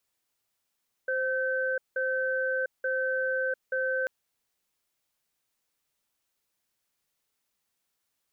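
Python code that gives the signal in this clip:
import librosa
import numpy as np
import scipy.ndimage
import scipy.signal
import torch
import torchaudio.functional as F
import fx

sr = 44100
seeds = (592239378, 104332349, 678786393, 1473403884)

y = fx.cadence(sr, length_s=2.99, low_hz=522.0, high_hz=1540.0, on_s=0.7, off_s=0.18, level_db=-28.5)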